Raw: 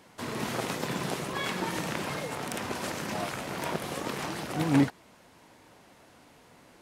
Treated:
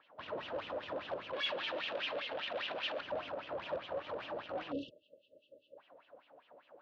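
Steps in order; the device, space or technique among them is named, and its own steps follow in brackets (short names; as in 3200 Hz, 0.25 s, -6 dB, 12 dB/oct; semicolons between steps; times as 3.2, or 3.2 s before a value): wah-wah guitar rig (wah 5 Hz 490–3100 Hz, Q 5.1; tube stage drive 46 dB, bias 0.6; speaker cabinet 83–3900 Hz, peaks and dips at 100 Hz +4 dB, 290 Hz +7 dB, 580 Hz +10 dB, 2100 Hz -8 dB); 1.33–3.01 weighting filter D; 4.72–5.78 spectral delete 630–2600 Hz; gain +6.5 dB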